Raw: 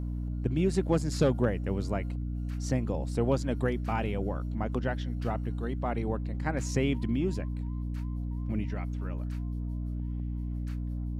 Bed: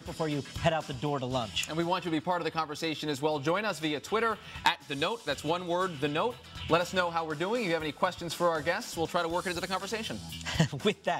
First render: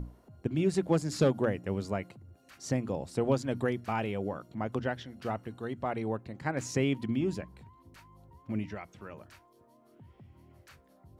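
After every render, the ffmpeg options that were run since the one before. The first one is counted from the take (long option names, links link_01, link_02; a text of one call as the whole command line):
ffmpeg -i in.wav -af "bandreject=frequency=60:width_type=h:width=6,bandreject=frequency=120:width_type=h:width=6,bandreject=frequency=180:width_type=h:width=6,bandreject=frequency=240:width_type=h:width=6,bandreject=frequency=300:width_type=h:width=6" out.wav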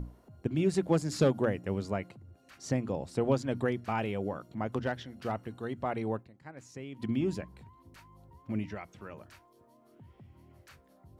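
ffmpeg -i in.wav -filter_complex "[0:a]asettb=1/sr,asplit=3[link_01][link_02][link_03];[link_01]atrim=end=1.794[link_04];[link_02]atrim=start=1.79:end=3.98,asetpts=PTS-STARTPTS,afade=type=in:duration=0.004:curve=qsin,afade=type=out:start_time=2.186:duration=0.004:curve=qsin,highshelf=frequency=8500:gain=-5.5[link_05];[link_03]atrim=start=3.976[link_06];[link_04][link_05]acrossfade=duration=0.004:curve1=hsin:curve2=qsin[link_07];[link_07][link_06]acrossfade=duration=0.004:curve1=qsin:curve2=hsin,asettb=1/sr,asplit=3[link_08][link_09][link_10];[link_08]atrim=end=4.714[link_11];[link_09]atrim=start=4.71:end=5.32,asetpts=PTS-STARTPTS,afade=type=in:duration=0.004:curve=qsin,afade=type=out:start_time=0.606:duration=0.004:curve=qsin,asoftclip=type=hard:threshold=-22.5dB[link_12];[link_10]atrim=start=5.316[link_13];[link_11][link_12]acrossfade=duration=0.004:curve1=hsin:curve2=qsin[link_14];[link_14][link_13]acrossfade=duration=0.004:curve1=qsin:curve2=hsin,asplit=3[link_15][link_16][link_17];[link_15]atrim=end=6.32,asetpts=PTS-STARTPTS,afade=type=out:start_time=6.19:duration=0.13:curve=qua:silence=0.177828[link_18];[link_16]atrim=start=6.32:end=6.91,asetpts=PTS-STARTPTS,volume=-15dB[link_19];[link_17]atrim=start=6.91,asetpts=PTS-STARTPTS,afade=type=in:duration=0.13:curve=qua:silence=0.177828[link_20];[link_18][link_19][link_20]concat=n=3:v=0:a=1" out.wav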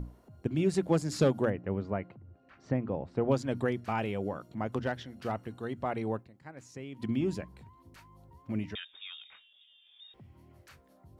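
ffmpeg -i in.wav -filter_complex "[0:a]asettb=1/sr,asplit=3[link_01][link_02][link_03];[link_01]atrim=end=1.504[link_04];[link_02]atrim=start=1.5:end=3.31,asetpts=PTS-STARTPTS,afade=type=in:duration=0.004:curve=qsin,afade=type=out:start_time=1.806:duration=0.004:curve=qsin,lowpass=2000[link_05];[link_03]atrim=start=3.306[link_06];[link_04][link_05]acrossfade=duration=0.004:curve1=hsin:curve2=qsin[link_07];[link_07][link_06]acrossfade=duration=0.004:curve1=qsin:curve2=hsin,asettb=1/sr,asplit=3[link_08][link_09][link_10];[link_08]atrim=end=8.754[link_11];[link_09]atrim=start=8.75:end=10.14,asetpts=PTS-STARTPTS,afade=type=in:duration=0.004:curve=qsin,afade=type=out:start_time=1.386:duration=0.004:curve=qsin,lowpass=frequency=3200:width_type=q:width=0.5098,lowpass=frequency=3200:width_type=q:width=0.6013,lowpass=frequency=3200:width_type=q:width=0.9,lowpass=frequency=3200:width_type=q:width=2.563,afreqshift=-3800[link_12];[link_10]atrim=start=10.136[link_13];[link_11][link_12]acrossfade=duration=0.004:curve1=hsin:curve2=qsin[link_14];[link_14][link_13]acrossfade=duration=0.004:curve1=qsin:curve2=hsin" out.wav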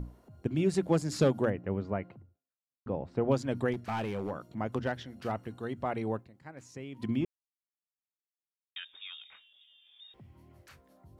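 ffmpeg -i in.wav -filter_complex "[0:a]asettb=1/sr,asplit=3[link_01][link_02][link_03];[link_01]atrim=end=3.734[link_04];[link_02]atrim=start=3.73:end=4.31,asetpts=PTS-STARTPTS,afade=type=in:duration=0.004:curve=qsin,afade=type=out:start_time=0.576:duration=0.004:curve=qsin,volume=29dB,asoftclip=hard,volume=-29dB[link_05];[link_03]atrim=start=4.306[link_06];[link_04][link_05]acrossfade=duration=0.004:curve1=hsin:curve2=qsin[link_07];[link_07][link_06]acrossfade=duration=0.004:curve1=qsin:curve2=hsin,asplit=4[link_08][link_09][link_10][link_11];[link_08]atrim=end=2.86,asetpts=PTS-STARTPTS,afade=type=out:start_time=2.21:duration=0.65:curve=exp[link_12];[link_09]atrim=start=2.86:end=7.25,asetpts=PTS-STARTPTS,afade=type=in:duration=0.004:curve=hsin,afade=type=out:start_time=4.386:duration=0.004:curve=hsin[link_13];[link_10]atrim=start=7.25:end=8.76,asetpts=PTS-STARTPTS,volume=0[link_14];[link_11]atrim=start=8.76,asetpts=PTS-STARTPTS,afade=type=in:duration=0.004:curve=hsin[link_15];[link_12][link_13][link_14][link_15]concat=n=4:v=0:a=1" out.wav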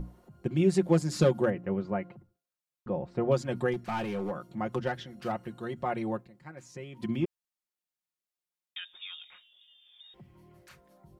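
ffmpeg -i in.wav -af "aecho=1:1:5.6:0.67" out.wav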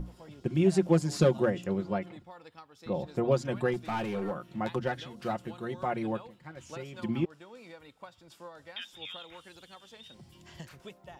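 ffmpeg -i in.wav -i bed.wav -filter_complex "[1:a]volume=-19.5dB[link_01];[0:a][link_01]amix=inputs=2:normalize=0" out.wav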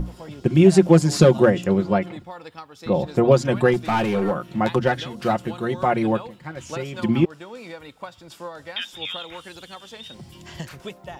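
ffmpeg -i in.wav -af "volume=11.5dB,alimiter=limit=-3dB:level=0:latency=1" out.wav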